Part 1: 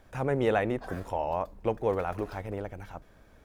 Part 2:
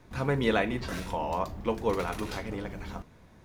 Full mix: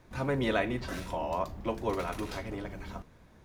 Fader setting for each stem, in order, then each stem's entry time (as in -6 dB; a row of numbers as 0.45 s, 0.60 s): -8.5 dB, -3.0 dB; 0.00 s, 0.00 s